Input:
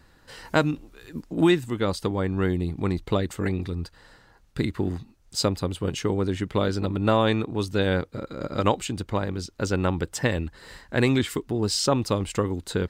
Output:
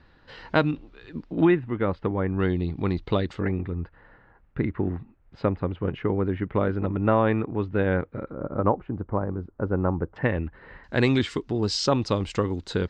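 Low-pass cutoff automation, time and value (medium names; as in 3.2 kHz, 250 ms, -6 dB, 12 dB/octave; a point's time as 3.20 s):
low-pass 24 dB/octave
4.1 kHz
from 1.45 s 2.3 kHz
from 2.40 s 4.6 kHz
from 3.41 s 2.2 kHz
from 8.30 s 1.3 kHz
from 10.16 s 2.3 kHz
from 10.84 s 6 kHz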